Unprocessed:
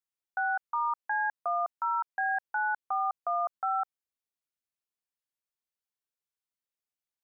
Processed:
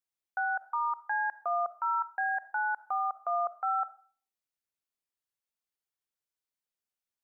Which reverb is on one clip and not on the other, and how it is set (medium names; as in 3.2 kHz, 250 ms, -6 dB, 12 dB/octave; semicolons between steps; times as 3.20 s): algorithmic reverb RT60 0.45 s, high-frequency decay 0.6×, pre-delay 5 ms, DRR 15 dB; trim -1 dB